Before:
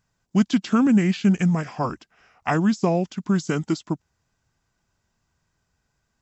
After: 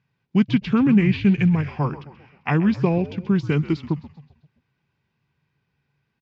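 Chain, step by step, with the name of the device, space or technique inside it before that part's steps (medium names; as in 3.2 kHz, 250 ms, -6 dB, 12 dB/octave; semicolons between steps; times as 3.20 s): frequency-shifting delay pedal into a guitar cabinet (frequency-shifting echo 131 ms, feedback 50%, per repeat -79 Hz, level -15 dB; cabinet simulation 92–4000 Hz, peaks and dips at 140 Hz +10 dB, 410 Hz +3 dB, 650 Hz -8 dB, 1.3 kHz -5 dB, 2.4 kHz +7 dB)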